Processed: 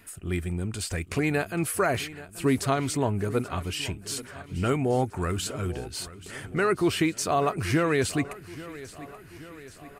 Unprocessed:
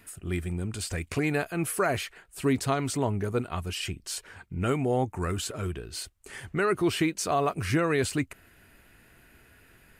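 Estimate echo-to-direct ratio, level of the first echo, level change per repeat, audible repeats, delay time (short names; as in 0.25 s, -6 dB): -15.0 dB, -17.0 dB, -4.5 dB, 4, 0.831 s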